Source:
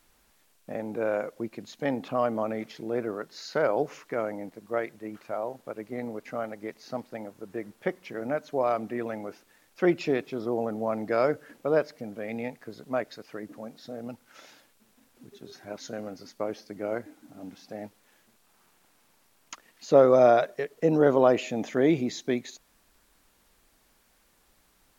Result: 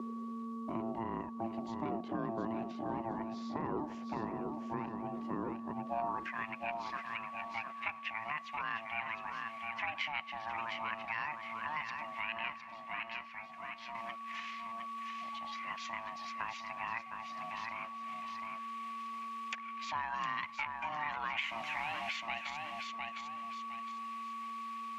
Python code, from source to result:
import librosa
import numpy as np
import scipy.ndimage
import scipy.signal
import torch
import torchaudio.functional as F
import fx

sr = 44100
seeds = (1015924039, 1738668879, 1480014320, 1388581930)

p1 = fx.over_compress(x, sr, threshold_db=-29.0, ratio=-1.0)
p2 = x + F.gain(torch.from_numpy(p1), 1.5).numpy()
p3 = p2 + 10.0 ** (-31.0 / 20.0) * np.sin(2.0 * np.pi * 680.0 * np.arange(len(p2)) / sr)
p4 = fx.comb_fb(p3, sr, f0_hz=250.0, decay_s=0.15, harmonics='all', damping=0.0, mix_pct=80, at=(12.58, 13.95))
p5 = fx.quant_dither(p4, sr, seeds[0], bits=6, dither='none', at=(21.41, 22.17))
p6 = p5 * np.sin(2.0 * np.pi * 450.0 * np.arange(len(p5)) / sr)
p7 = fx.filter_sweep_bandpass(p6, sr, from_hz=370.0, to_hz=2400.0, start_s=5.81, end_s=6.37, q=3.5)
p8 = fx.echo_feedback(p7, sr, ms=709, feedback_pct=20, wet_db=-7.5)
p9 = fx.band_squash(p8, sr, depth_pct=70)
y = F.gain(torch.from_numpy(p9), 2.0).numpy()